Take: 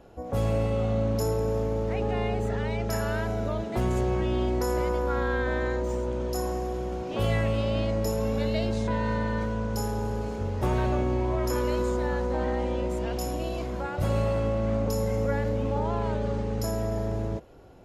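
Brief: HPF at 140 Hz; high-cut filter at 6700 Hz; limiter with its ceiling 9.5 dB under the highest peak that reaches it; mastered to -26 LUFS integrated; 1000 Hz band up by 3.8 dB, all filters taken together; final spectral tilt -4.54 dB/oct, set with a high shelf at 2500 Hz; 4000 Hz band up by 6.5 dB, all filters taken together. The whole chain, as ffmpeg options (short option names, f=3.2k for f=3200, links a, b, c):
-af "highpass=140,lowpass=6.7k,equalizer=f=1k:t=o:g=4,highshelf=f=2.5k:g=3.5,equalizer=f=4k:t=o:g=6,volume=5.5dB,alimiter=limit=-17.5dB:level=0:latency=1"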